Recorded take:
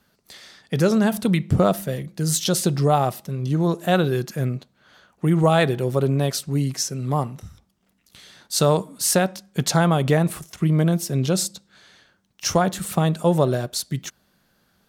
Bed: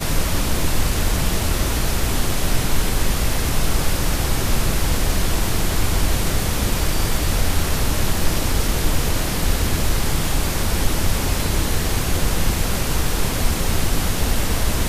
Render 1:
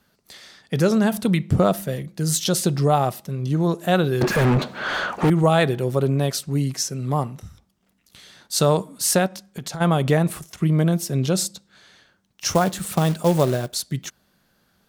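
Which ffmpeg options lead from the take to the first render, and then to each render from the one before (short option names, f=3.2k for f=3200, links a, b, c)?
-filter_complex "[0:a]asettb=1/sr,asplit=3[a][b][c];[a]atrim=end=4.214[d];[b]atrim=start=4.21:end=5.3,asetpts=PTS-STARTPTS,afade=t=in:d=0.004:c=qsin,afade=t=out:st=1.086:d=0.004:c=qsin,asplit=2[e][f];[f]highpass=f=720:p=1,volume=43dB,asoftclip=type=tanh:threshold=-9.5dB[g];[e][g]amix=inputs=2:normalize=0,lowpass=f=1.3k:p=1,volume=-6dB[h];[c]atrim=start=5.296[i];[d][h]acrossfade=d=0.004:c1=hsin:c2=qsin[j];[j][i]acrossfade=d=0.004:c1=qsin:c2=hsin,asplit=3[k][l][m];[k]afade=t=out:st=9.27:d=0.02[n];[l]acompressor=threshold=-27dB:ratio=12:attack=3.2:release=140:knee=1:detection=peak,afade=t=in:st=9.27:d=0.02,afade=t=out:st=9.8:d=0.02[o];[m]afade=t=in:st=9.8:d=0.02[p];[n][o][p]amix=inputs=3:normalize=0,asettb=1/sr,asplit=3[q][r][s];[q]atrim=end=12.494[t];[r]atrim=start=12.49:end=13.75,asetpts=PTS-STARTPTS,afade=t=in:d=0.004:c=qsin,afade=t=out:st=1.256:d=0.004:c=qsin,acrusher=bits=4:mode=log:mix=0:aa=0.000001[u];[s]atrim=start=13.746[v];[t][u]acrossfade=d=0.004:c1=hsin:c2=qsin[w];[w][v]acrossfade=d=0.004:c1=qsin:c2=hsin"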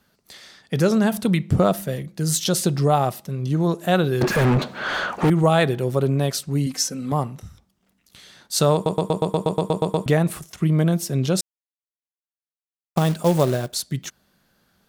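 -filter_complex "[0:a]asettb=1/sr,asplit=3[a][b][c];[a]atrim=end=6.664[d];[b]atrim=start=6.66:end=7.12,asetpts=PTS-STARTPTS,afade=t=in:d=0.004:c=qsin,afade=t=out:st=0.456:d=0.004:c=qsin,aecho=1:1:3.9:0.71,atrim=end_sample=20286[e];[c]atrim=start=7.116[f];[d][e]acrossfade=d=0.004:c1=hsin:c2=qsin[g];[g][f]acrossfade=d=0.004:c1=qsin:c2=hsin,asplit=14[h][i][j][k][l][m][n][o][p][q][r][s][t][u];[h]atrim=end=8.862[v];[i]atrim=start=8.738:end=8.862[w];[j]atrim=start=8.738:end=8.862[x];[k]atrim=start=8.738:end=8.862[y];[l]atrim=start=8.738:end=8.862[z];[m]atrim=start=8.738:end=8.862[aa];[n]atrim=start=8.738:end=8.862[ab];[o]atrim=start=8.738:end=8.862[ac];[p]atrim=start=8.738:end=8.862[ad];[q]atrim=start=8.738:end=8.862[ae];[r]atrim=start=8.738:end=8.862[af];[s]atrim=start=10.058:end=11.41,asetpts=PTS-STARTPTS,afade=t=out:st=1.348:d=0.004:c=hsin[ag];[t]atrim=start=11.41:end=12.96,asetpts=PTS-STARTPTS,volume=0[ah];[u]atrim=start=12.96,asetpts=PTS-STARTPTS,afade=t=in:d=0.004:c=hsin[ai];[v][w]acrossfade=d=0.004:c1=hsin:c2=hsin[aj];[aj][x]acrossfade=d=0.004:c1=hsin:c2=hsin[ak];[ak][y]acrossfade=d=0.004:c1=hsin:c2=hsin[al];[al][z]acrossfade=d=0.004:c1=hsin:c2=hsin[am];[am][aa]acrossfade=d=0.004:c1=hsin:c2=hsin[an];[an][ab]acrossfade=d=0.004:c1=hsin:c2=hsin[ao];[ao][ac]acrossfade=d=0.004:c1=hsin:c2=hsin[ap];[ap][ad]acrossfade=d=0.004:c1=hsin:c2=hsin[aq];[aq][ae]acrossfade=d=0.004:c1=hsin:c2=hsin[ar];[ar][af]acrossfade=d=0.004:c1=hsin:c2=hsin[as];[ag][ah][ai]concat=n=3:v=0:a=1[at];[as][at]acrossfade=d=0.004:c1=hsin:c2=hsin"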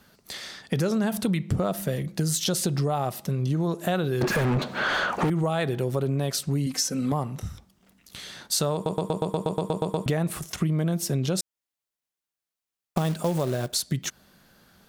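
-filter_complex "[0:a]asplit=2[a][b];[b]alimiter=limit=-15dB:level=0:latency=1,volume=0.5dB[c];[a][c]amix=inputs=2:normalize=0,acompressor=threshold=-24dB:ratio=4"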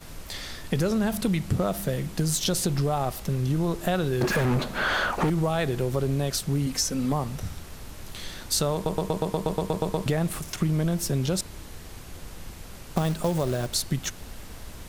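-filter_complex "[1:a]volume=-21.5dB[a];[0:a][a]amix=inputs=2:normalize=0"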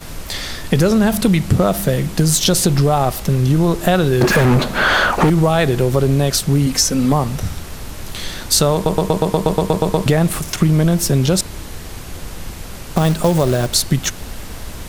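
-af "volume=11dB,alimiter=limit=-1dB:level=0:latency=1"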